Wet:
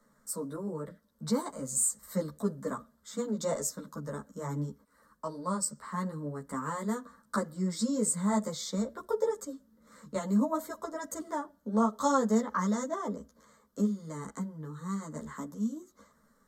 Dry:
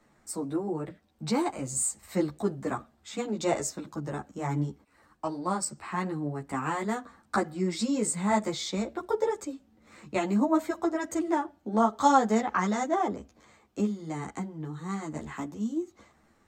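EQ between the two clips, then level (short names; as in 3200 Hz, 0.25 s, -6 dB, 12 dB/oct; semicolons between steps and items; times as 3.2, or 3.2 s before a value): bell 12000 Hz +10 dB 0.4 oct; dynamic EQ 1500 Hz, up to -5 dB, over -45 dBFS, Q 1.9; fixed phaser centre 510 Hz, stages 8; 0.0 dB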